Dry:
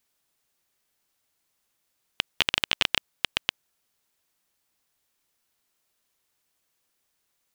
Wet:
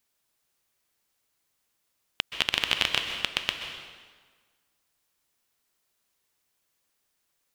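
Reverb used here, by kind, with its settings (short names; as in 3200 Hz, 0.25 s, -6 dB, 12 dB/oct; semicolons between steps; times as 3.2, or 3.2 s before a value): plate-style reverb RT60 1.5 s, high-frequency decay 0.85×, pre-delay 0.115 s, DRR 5 dB; gain -1.5 dB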